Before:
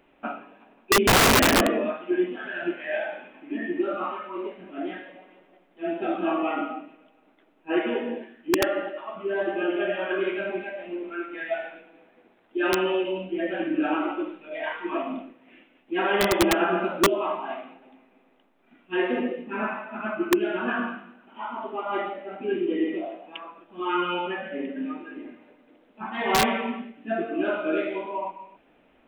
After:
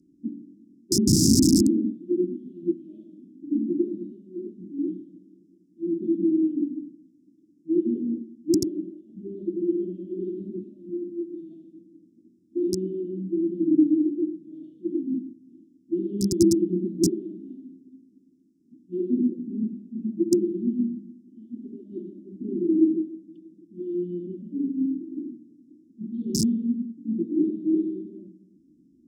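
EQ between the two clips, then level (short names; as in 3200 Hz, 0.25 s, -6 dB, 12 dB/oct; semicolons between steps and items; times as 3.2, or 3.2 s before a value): HPF 100 Hz; Chebyshev band-stop 330–5100 Hz, order 5; air absorption 55 m; +7.5 dB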